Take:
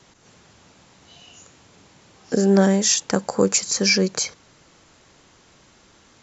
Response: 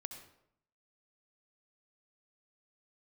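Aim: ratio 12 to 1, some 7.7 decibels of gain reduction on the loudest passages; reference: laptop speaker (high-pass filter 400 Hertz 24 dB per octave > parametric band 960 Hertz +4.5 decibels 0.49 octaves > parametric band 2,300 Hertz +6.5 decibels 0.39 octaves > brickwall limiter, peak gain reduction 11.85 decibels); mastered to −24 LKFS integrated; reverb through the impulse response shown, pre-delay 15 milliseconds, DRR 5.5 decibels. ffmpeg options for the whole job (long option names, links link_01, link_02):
-filter_complex "[0:a]acompressor=threshold=-19dB:ratio=12,asplit=2[link_01][link_02];[1:a]atrim=start_sample=2205,adelay=15[link_03];[link_02][link_03]afir=irnorm=-1:irlink=0,volume=-2.5dB[link_04];[link_01][link_04]amix=inputs=2:normalize=0,highpass=frequency=400:width=0.5412,highpass=frequency=400:width=1.3066,equalizer=frequency=960:width_type=o:width=0.49:gain=4.5,equalizer=frequency=2300:width_type=o:width=0.39:gain=6.5,volume=5.5dB,alimiter=limit=-14.5dB:level=0:latency=1"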